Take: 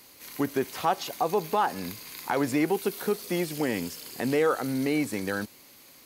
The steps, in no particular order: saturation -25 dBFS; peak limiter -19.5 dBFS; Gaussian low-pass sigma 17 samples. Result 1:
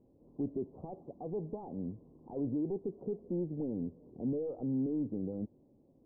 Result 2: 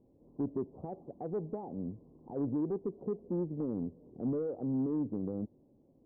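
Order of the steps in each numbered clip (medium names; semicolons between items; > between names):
peak limiter > saturation > Gaussian low-pass; peak limiter > Gaussian low-pass > saturation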